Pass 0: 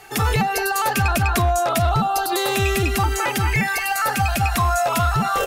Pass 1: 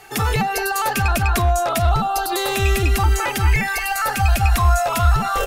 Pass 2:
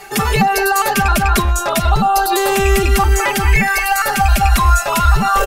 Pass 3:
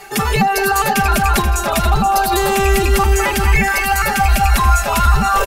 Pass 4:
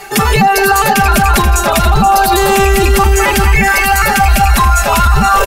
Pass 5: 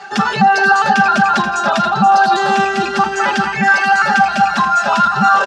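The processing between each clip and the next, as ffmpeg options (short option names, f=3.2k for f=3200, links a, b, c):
-af "asubboost=boost=7:cutoff=59"
-af "aecho=1:1:5:0.88,areverse,acompressor=mode=upward:threshold=-18dB:ratio=2.5,areverse,volume=3dB"
-af "aecho=1:1:481|962|1443|1924:0.316|0.123|0.0481|0.0188,volume=-1dB"
-af "alimiter=limit=-8dB:level=0:latency=1:release=12,volume=6.5dB"
-af "highpass=f=170:w=0.5412,highpass=f=170:w=1.3066,equalizer=f=200:t=q:w=4:g=6,equalizer=f=300:t=q:w=4:g=-8,equalizer=f=450:t=q:w=4:g=-7,equalizer=f=790:t=q:w=4:g=4,equalizer=f=1.5k:t=q:w=4:g=9,equalizer=f=2.2k:t=q:w=4:g=-9,lowpass=f=5.7k:w=0.5412,lowpass=f=5.7k:w=1.3066,volume=-4.5dB"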